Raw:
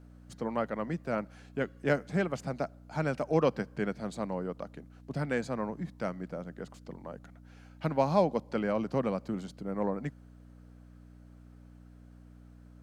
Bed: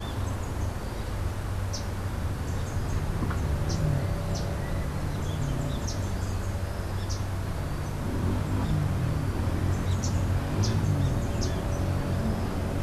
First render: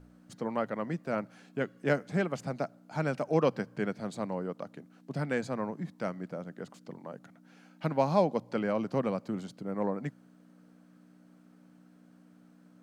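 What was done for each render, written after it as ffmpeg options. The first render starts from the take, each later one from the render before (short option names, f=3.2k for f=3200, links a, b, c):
-af "bandreject=f=60:t=h:w=4,bandreject=f=120:t=h:w=4"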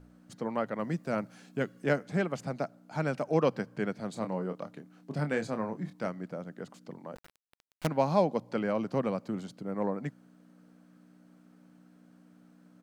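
-filter_complex "[0:a]asettb=1/sr,asplit=3[a][b][c];[a]atrim=end=0.794[d];[b]atrim=start=0.79:end=1.86,asetpts=PTS-STARTPTS,afade=t=in:d=0.004:c=qsin,afade=t=out:st=1.066:d=0.004:c=qsin,bass=f=250:g=3,treble=f=4k:g=6[e];[c]atrim=start=1.856[f];[d][e]acrossfade=d=0.004:c1=hsin:c2=qsin[g];[g][f]acrossfade=d=0.004:c1=qsin:c2=hsin,asplit=3[h][i][j];[h]afade=t=out:st=4.15:d=0.02[k];[i]asplit=2[l][m];[m]adelay=27,volume=-8dB[n];[l][n]amix=inputs=2:normalize=0,afade=t=in:st=4.15:d=0.02,afade=t=out:st=6.06:d=0.02[o];[j]afade=t=in:st=6.06:d=0.02[p];[k][o][p]amix=inputs=3:normalize=0,asettb=1/sr,asplit=3[q][r][s];[q]atrim=end=7.154[t];[r]atrim=start=7.15:end=7.87,asetpts=PTS-STARTPTS,afade=t=in:d=0.004:c=qsin,afade=t=out:st=0.716:d=0.004:c=qsin,acrusher=bits=5:dc=4:mix=0:aa=0.000001[u];[s]atrim=start=7.866[v];[t][u]acrossfade=d=0.004:c1=hsin:c2=qsin[w];[w][v]acrossfade=d=0.004:c1=qsin:c2=hsin"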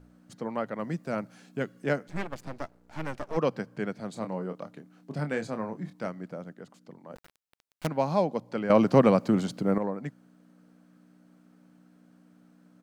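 -filter_complex "[0:a]asplit=3[a][b][c];[a]afade=t=out:st=2.07:d=0.02[d];[b]aeval=exprs='max(val(0),0)':c=same,afade=t=in:st=2.07:d=0.02,afade=t=out:st=3.36:d=0.02[e];[c]afade=t=in:st=3.36:d=0.02[f];[d][e][f]amix=inputs=3:normalize=0,asplit=5[g][h][i][j][k];[g]atrim=end=6.532[l];[h]atrim=start=6.528:end=7.102,asetpts=PTS-STARTPTS,volume=-4dB[m];[i]atrim=start=7.098:end=8.702[n];[j]atrim=start=8.698:end=9.782,asetpts=PTS-STARTPTS,volume=11dB[o];[k]atrim=start=9.778[p];[l][m]acrossfade=d=0.004:c1=hsin:c2=hsin[q];[q][n]acrossfade=d=0.004:c1=hsin:c2=hsin[r];[r][o]acrossfade=d=0.004:c1=hsin:c2=hsin[s];[s][p]acrossfade=d=0.004:c1=hsin:c2=hsin"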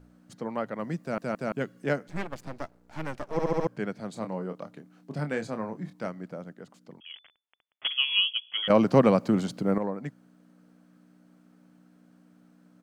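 -filter_complex "[0:a]asettb=1/sr,asplit=3[a][b][c];[a]atrim=end=7.004[d];[b]atrim=start=7:end=8.68,asetpts=PTS-STARTPTS,afade=t=in:d=0.004:c=qsin,afade=t=out:st=1.676:d=0.004:c=qsin,lowpass=f=3k:t=q:w=0.5098,lowpass=f=3k:t=q:w=0.6013,lowpass=f=3k:t=q:w=0.9,lowpass=f=3k:t=q:w=2.563,afreqshift=-3500[e];[c]atrim=start=8.676[f];[d][e]acrossfade=d=0.004:c1=hsin:c2=qsin[g];[g][f]acrossfade=d=0.004:c1=qsin:c2=hsin,asplit=9[h][i][j][k][l][m][n][o][p];[h]atrim=end=1.182[q];[i]atrim=start=1.008:end=1.182[r];[j]atrim=start=1.008:end=1.182[s];[k]atrim=start=1.518:end=3.392[t];[l]atrim=start=3.318:end=3.392[u];[m]atrim=start=3.318:end=3.392[v];[n]atrim=start=3.318:end=3.392[w];[o]atrim=start=3.318:end=3.392[x];[p]atrim=start=3.668[y];[q][r]acrossfade=d=0.004:c1=hsin:c2=hsin[z];[z][s]acrossfade=d=0.004:c1=hsin:c2=hsin[aa];[aa][t]acrossfade=d=0.004:c1=hsin:c2=hsin[ab];[ab][u]acrossfade=d=0.004:c1=hsin:c2=hsin[ac];[ac][v]acrossfade=d=0.004:c1=hsin:c2=hsin[ad];[ad][w]acrossfade=d=0.004:c1=hsin:c2=hsin[ae];[ae][x]acrossfade=d=0.004:c1=hsin:c2=hsin[af];[af][y]acrossfade=d=0.004:c1=hsin:c2=hsin"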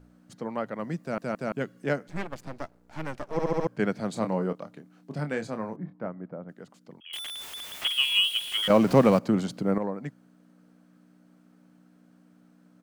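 -filter_complex "[0:a]asettb=1/sr,asplit=3[a][b][c];[a]atrim=end=3.794[d];[b]atrim=start=3.79:end=4.53,asetpts=PTS-STARTPTS,afade=t=in:d=0.004:c=qsin,afade=t=out:st=0.736:d=0.004:c=qsin,acontrast=49[e];[c]atrim=start=4.526[f];[d][e]acrossfade=d=0.004:c1=hsin:c2=qsin[g];[g][f]acrossfade=d=0.004:c1=qsin:c2=hsin,asettb=1/sr,asplit=3[h][i][j];[h]atrim=end=5.764[k];[i]atrim=start=5.76:end=6.49,asetpts=PTS-STARTPTS,afade=t=in:d=0.004:c=qsin,afade=t=out:st=0.726:d=0.004:c=qsin,lowpass=1.3k[l];[j]atrim=start=6.486[m];[k][l]acrossfade=d=0.004:c1=hsin:c2=qsin[n];[n][m]acrossfade=d=0.004:c1=qsin:c2=hsin,asettb=1/sr,asplit=3[o][p][q];[o]atrim=end=7.134[r];[p]atrim=start=7.13:end=9.19,asetpts=PTS-STARTPTS,afade=t=in:d=0.004:c=qsin,afade=t=out:st=2.056:d=0.004:c=qsin,aeval=exprs='val(0)+0.5*0.0266*sgn(val(0))':c=same[s];[q]atrim=start=9.186[t];[r][s]acrossfade=d=0.004:c1=hsin:c2=qsin[u];[u][t]acrossfade=d=0.004:c1=qsin:c2=hsin"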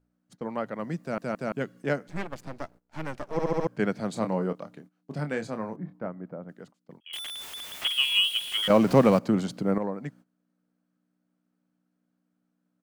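-af "agate=range=-18dB:threshold=-49dB:ratio=16:detection=peak"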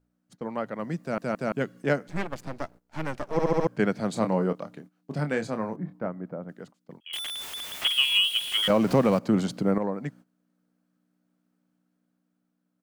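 -af "dynaudnorm=f=250:g=9:m=3dB,alimiter=limit=-11.5dB:level=0:latency=1:release=267"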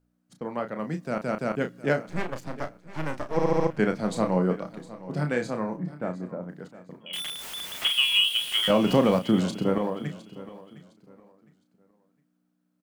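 -filter_complex "[0:a]asplit=2[a][b];[b]adelay=33,volume=-8dB[c];[a][c]amix=inputs=2:normalize=0,aecho=1:1:710|1420|2130:0.141|0.0381|0.0103"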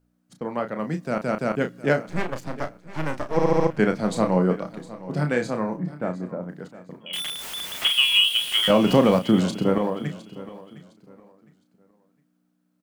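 -af "volume=3.5dB"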